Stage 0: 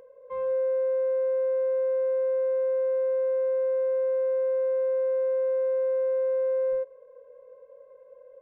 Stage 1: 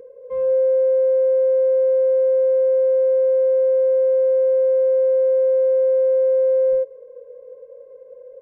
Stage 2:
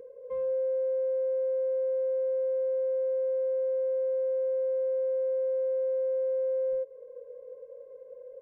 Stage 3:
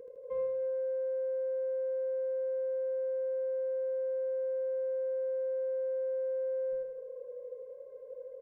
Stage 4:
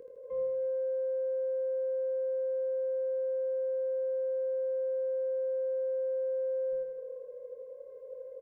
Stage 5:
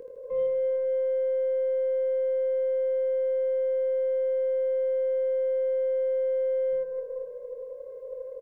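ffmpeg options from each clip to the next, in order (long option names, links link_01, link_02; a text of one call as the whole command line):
ffmpeg -i in.wav -af "lowshelf=frequency=580:width_type=q:width=3:gain=7.5" out.wav
ffmpeg -i in.wav -af "acompressor=threshold=-28dB:ratio=2,volume=-5dB" out.wav
ffmpeg -i in.wav -af "aecho=1:1:79|158|237|316|395|474|553|632:0.562|0.326|0.189|0.11|0.0636|0.0369|0.0214|0.0124,volume=-2dB" out.wav
ffmpeg -i in.wav -filter_complex "[0:a]acrossover=split=600[link_01][link_02];[link_02]alimiter=level_in=20.5dB:limit=-24dB:level=0:latency=1:release=321,volume=-20.5dB[link_03];[link_01][link_03]amix=inputs=2:normalize=0,asplit=2[link_04][link_05];[link_05]adelay=23,volume=-7.5dB[link_06];[link_04][link_06]amix=inputs=2:normalize=0" out.wav
ffmpeg -i in.wav -af "aecho=1:1:456:0.2,aeval=exprs='0.0473*(cos(1*acos(clip(val(0)/0.0473,-1,1)))-cos(1*PI/2))+0.000596*(cos(6*acos(clip(val(0)/0.0473,-1,1)))-cos(6*PI/2))':channel_layout=same,volume=6dB" out.wav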